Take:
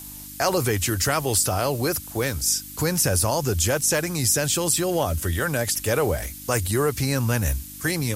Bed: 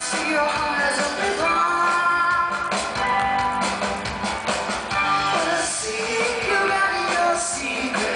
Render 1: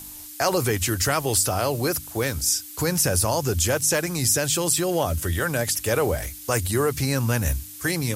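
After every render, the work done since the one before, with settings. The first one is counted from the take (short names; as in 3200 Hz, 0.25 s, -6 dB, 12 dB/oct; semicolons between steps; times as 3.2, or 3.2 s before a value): de-hum 50 Hz, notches 5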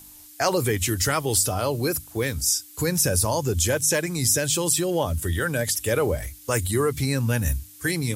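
noise print and reduce 7 dB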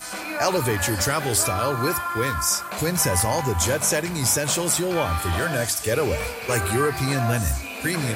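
add bed -8.5 dB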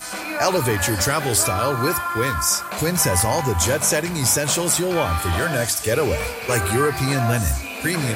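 gain +2.5 dB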